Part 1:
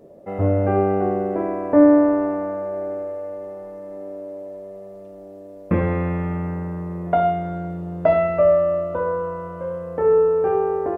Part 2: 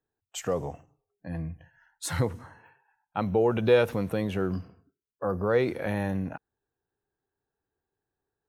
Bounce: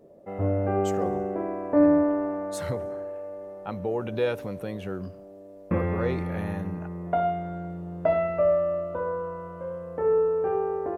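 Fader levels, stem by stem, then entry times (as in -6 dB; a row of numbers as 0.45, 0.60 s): -6.5, -5.5 dB; 0.00, 0.50 s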